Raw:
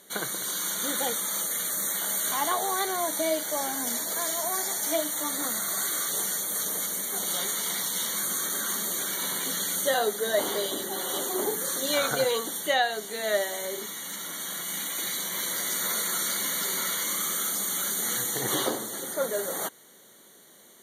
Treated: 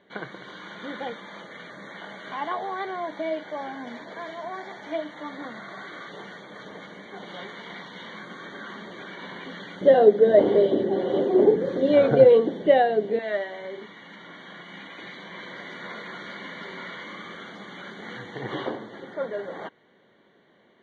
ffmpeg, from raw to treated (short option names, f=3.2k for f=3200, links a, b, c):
-filter_complex "[0:a]asettb=1/sr,asplit=3[a][b][c];[a]atrim=end=9.814[d];[b]atrim=start=9.81:end=13.19,asetpts=PTS-STARTPTS,afade=t=in:d=0.004:c=qsin,afade=t=out:st=3.376:d=0.004:c=qsin,lowshelf=f=740:t=q:w=1.5:g=12[e];[c]atrim=start=13.186[f];[d][e]acrossfade=d=0.004:c1=hsin:c2=qsin[g];[g][f]acrossfade=d=0.004:c1=qsin:c2=hsin,lowpass=f=2.8k:w=0.5412,lowpass=f=2.8k:w=1.3066,lowshelf=f=130:g=5,bandreject=f=1.3k:w=9.8,volume=-1.5dB"